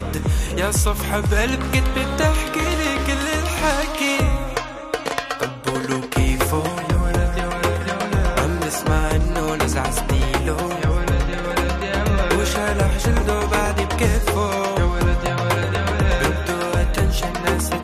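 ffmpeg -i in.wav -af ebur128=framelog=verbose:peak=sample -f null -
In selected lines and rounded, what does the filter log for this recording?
Integrated loudness:
  I:         -20.6 LUFS
  Threshold: -30.6 LUFS
Loudness range:
  LRA:         2.1 LU
  Threshold: -40.7 LUFS
  LRA low:   -21.9 LUFS
  LRA high:  -19.8 LUFS
Sample peak:
  Peak:       -5.8 dBFS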